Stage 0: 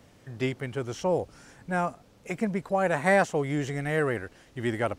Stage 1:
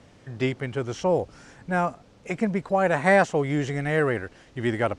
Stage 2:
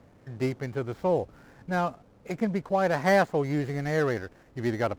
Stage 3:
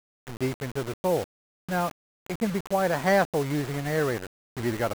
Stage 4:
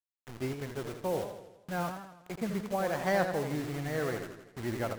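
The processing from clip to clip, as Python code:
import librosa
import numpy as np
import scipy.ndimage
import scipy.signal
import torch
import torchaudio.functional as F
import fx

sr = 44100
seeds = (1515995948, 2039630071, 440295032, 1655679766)

y1 = scipy.signal.sosfilt(scipy.signal.bessel(8, 7000.0, 'lowpass', norm='mag', fs=sr, output='sos'), x)
y1 = F.gain(torch.from_numpy(y1), 3.5).numpy()
y2 = scipy.ndimage.median_filter(y1, 15, mode='constant')
y2 = F.gain(torch.from_numpy(y2), -2.5).numpy()
y3 = fx.quant_dither(y2, sr, seeds[0], bits=6, dither='none')
y4 = fx.echo_warbled(y3, sr, ms=82, feedback_pct=55, rate_hz=2.8, cents=141, wet_db=-7.5)
y4 = F.gain(torch.from_numpy(y4), -7.5).numpy()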